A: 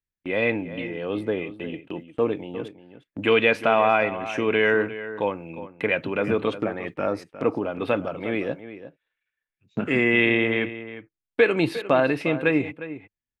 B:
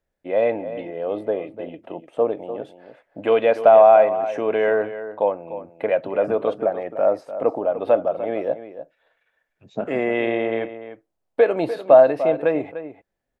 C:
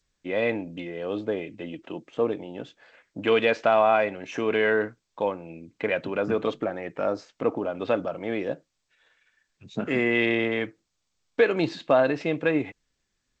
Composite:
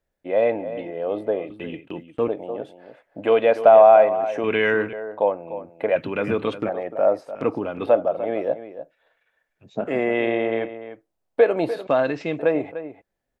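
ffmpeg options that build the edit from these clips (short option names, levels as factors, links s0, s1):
-filter_complex "[0:a]asplit=4[s0][s1][s2][s3];[1:a]asplit=6[s4][s5][s6][s7][s8][s9];[s4]atrim=end=1.502[s10];[s0]atrim=start=1.498:end=2.282[s11];[s5]atrim=start=2.278:end=4.442[s12];[s1]atrim=start=4.438:end=4.932[s13];[s6]atrim=start=4.928:end=5.962[s14];[s2]atrim=start=5.958:end=6.692[s15];[s7]atrim=start=6.688:end=7.352[s16];[s3]atrim=start=7.348:end=7.862[s17];[s8]atrim=start=7.858:end=11.872[s18];[2:a]atrim=start=11.868:end=12.392[s19];[s9]atrim=start=12.388[s20];[s10][s11]acrossfade=d=0.004:c1=hsin:c2=hsin[s21];[s21][s12]acrossfade=d=0.004:c1=hsin:c2=hsin[s22];[s22][s13]acrossfade=d=0.004:c1=hsin:c2=hsin[s23];[s23][s14]acrossfade=d=0.004:c1=hsin:c2=hsin[s24];[s24][s15]acrossfade=d=0.004:c1=hsin:c2=hsin[s25];[s25][s16]acrossfade=d=0.004:c1=hsin:c2=hsin[s26];[s26][s17]acrossfade=d=0.004:c1=hsin:c2=hsin[s27];[s27][s18]acrossfade=d=0.004:c1=hsin:c2=hsin[s28];[s28][s19]acrossfade=d=0.004:c1=hsin:c2=hsin[s29];[s29][s20]acrossfade=d=0.004:c1=hsin:c2=hsin"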